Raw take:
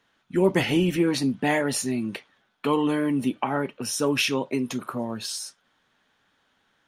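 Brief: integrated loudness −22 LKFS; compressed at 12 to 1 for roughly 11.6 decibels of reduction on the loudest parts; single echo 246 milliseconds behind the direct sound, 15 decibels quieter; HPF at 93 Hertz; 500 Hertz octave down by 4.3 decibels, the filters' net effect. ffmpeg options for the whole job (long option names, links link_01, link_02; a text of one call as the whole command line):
ffmpeg -i in.wav -af "highpass=93,equalizer=frequency=500:width_type=o:gain=-6,acompressor=threshold=-31dB:ratio=12,aecho=1:1:246:0.178,volume=13.5dB" out.wav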